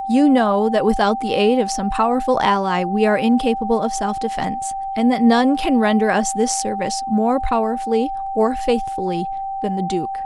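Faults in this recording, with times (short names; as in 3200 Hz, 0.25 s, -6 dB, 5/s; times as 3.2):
tone 780 Hz -23 dBFS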